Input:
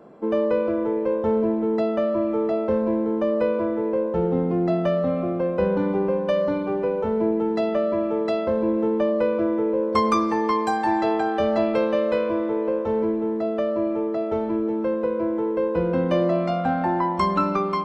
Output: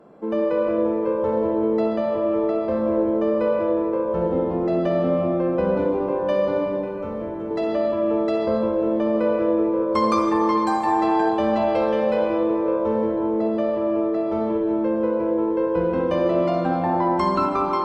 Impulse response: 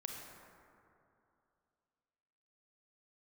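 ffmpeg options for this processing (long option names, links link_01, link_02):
-filter_complex "[0:a]asettb=1/sr,asplit=3[link_01][link_02][link_03];[link_01]atrim=end=6.664[link_04];[link_02]atrim=start=6.66:end=7.51,asetpts=PTS-STARTPTS,afade=type=in:duration=0.004:curve=qsin,afade=type=out:start_time=0.846:duration=0.004:curve=qsin,equalizer=frequency=250:width_type=o:width=1:gain=-6,equalizer=frequency=500:width_type=o:width=1:gain=-9,equalizer=frequency=1000:width_type=o:width=1:gain=-7,equalizer=frequency=4000:width_type=o:width=1:gain=-5[link_05];[link_03]atrim=start=7.506[link_06];[link_04][link_05]acrossfade=duration=0.004:curve1=hsin:curve2=qsin[link_07];[link_07][link_06]acrossfade=duration=0.004:curve1=qsin:curve2=hsin[link_08];[1:a]atrim=start_sample=2205,asetrate=31311,aresample=44100[link_09];[link_08][link_09]afir=irnorm=-1:irlink=0"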